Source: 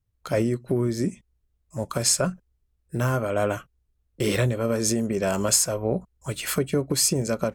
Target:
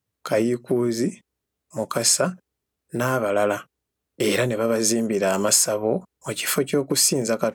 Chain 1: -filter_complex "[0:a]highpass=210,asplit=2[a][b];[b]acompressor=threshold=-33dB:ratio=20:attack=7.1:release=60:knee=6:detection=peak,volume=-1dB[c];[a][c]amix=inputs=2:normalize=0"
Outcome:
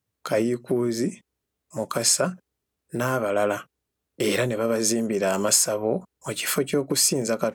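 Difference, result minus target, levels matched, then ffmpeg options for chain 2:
compressor: peak gain reduction +8 dB
-filter_complex "[0:a]highpass=210,asplit=2[a][b];[b]acompressor=threshold=-24.5dB:ratio=20:attack=7.1:release=60:knee=6:detection=peak,volume=-1dB[c];[a][c]amix=inputs=2:normalize=0"

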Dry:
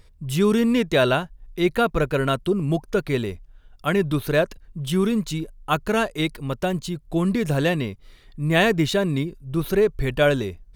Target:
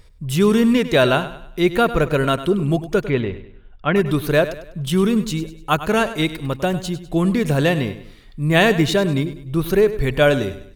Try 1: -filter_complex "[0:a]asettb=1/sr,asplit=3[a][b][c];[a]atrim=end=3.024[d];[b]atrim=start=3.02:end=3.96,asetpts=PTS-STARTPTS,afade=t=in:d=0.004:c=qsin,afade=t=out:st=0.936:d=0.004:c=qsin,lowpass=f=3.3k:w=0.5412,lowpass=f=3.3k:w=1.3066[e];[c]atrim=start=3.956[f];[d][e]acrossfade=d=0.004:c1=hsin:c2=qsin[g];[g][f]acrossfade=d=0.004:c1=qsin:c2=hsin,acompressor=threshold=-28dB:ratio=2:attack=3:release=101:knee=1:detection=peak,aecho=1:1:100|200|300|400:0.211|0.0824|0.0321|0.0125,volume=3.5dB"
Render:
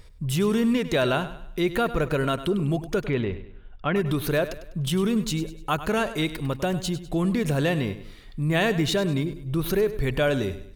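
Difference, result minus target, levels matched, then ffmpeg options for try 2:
compressor: peak gain reduction +9 dB
-filter_complex "[0:a]asettb=1/sr,asplit=3[a][b][c];[a]atrim=end=3.024[d];[b]atrim=start=3.02:end=3.96,asetpts=PTS-STARTPTS,afade=t=in:d=0.004:c=qsin,afade=t=out:st=0.936:d=0.004:c=qsin,lowpass=f=3.3k:w=0.5412,lowpass=f=3.3k:w=1.3066[e];[c]atrim=start=3.956[f];[d][e]acrossfade=d=0.004:c1=hsin:c2=qsin[g];[g][f]acrossfade=d=0.004:c1=qsin:c2=hsin,aecho=1:1:100|200|300|400:0.211|0.0824|0.0321|0.0125,volume=3.5dB"

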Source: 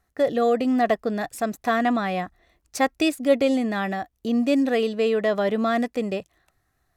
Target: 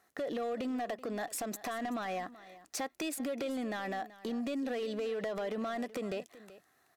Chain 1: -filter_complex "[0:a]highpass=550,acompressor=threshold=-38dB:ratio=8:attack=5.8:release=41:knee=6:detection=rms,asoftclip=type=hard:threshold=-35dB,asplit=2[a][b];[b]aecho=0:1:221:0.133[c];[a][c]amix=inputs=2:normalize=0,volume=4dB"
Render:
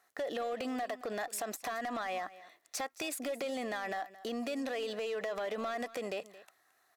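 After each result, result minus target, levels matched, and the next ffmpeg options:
echo 0.159 s early; 250 Hz band -4.0 dB
-filter_complex "[0:a]highpass=550,acompressor=threshold=-38dB:ratio=8:attack=5.8:release=41:knee=6:detection=rms,asoftclip=type=hard:threshold=-35dB,asplit=2[a][b];[b]aecho=0:1:380:0.133[c];[a][c]amix=inputs=2:normalize=0,volume=4dB"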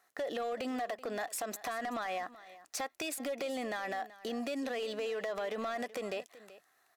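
250 Hz band -4.0 dB
-filter_complex "[0:a]highpass=270,acompressor=threshold=-38dB:ratio=8:attack=5.8:release=41:knee=6:detection=rms,asoftclip=type=hard:threshold=-35dB,asplit=2[a][b];[b]aecho=0:1:380:0.133[c];[a][c]amix=inputs=2:normalize=0,volume=4dB"

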